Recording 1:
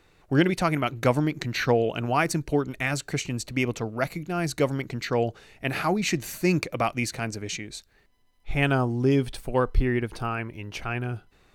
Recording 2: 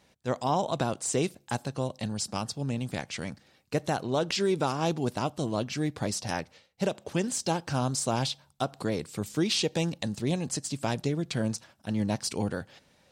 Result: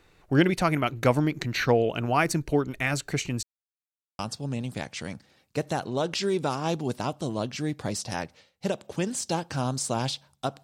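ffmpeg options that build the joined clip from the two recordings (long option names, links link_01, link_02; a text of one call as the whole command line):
ffmpeg -i cue0.wav -i cue1.wav -filter_complex "[0:a]apad=whole_dur=10.63,atrim=end=10.63,asplit=2[link_01][link_02];[link_01]atrim=end=3.43,asetpts=PTS-STARTPTS,afade=type=out:start_time=3.426:duration=0.004:curve=hsin[link_03];[link_02]atrim=start=3.43:end=4.19,asetpts=PTS-STARTPTS,volume=0[link_04];[1:a]atrim=start=2.36:end=8.8,asetpts=PTS-STARTPTS,afade=type=in:duration=0.004:curve=hsin[link_05];[link_03][link_04][link_05]concat=n=3:v=0:a=1" out.wav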